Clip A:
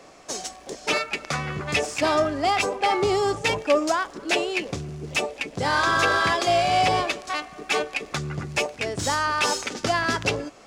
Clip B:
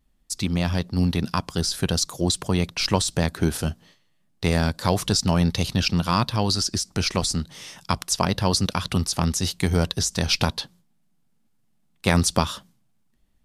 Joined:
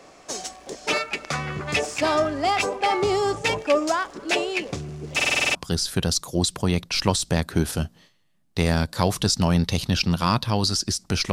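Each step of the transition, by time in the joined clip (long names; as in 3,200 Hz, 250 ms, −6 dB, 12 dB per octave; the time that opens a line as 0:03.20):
clip A
0:05.15: stutter in place 0.05 s, 8 plays
0:05.55: continue with clip B from 0:01.41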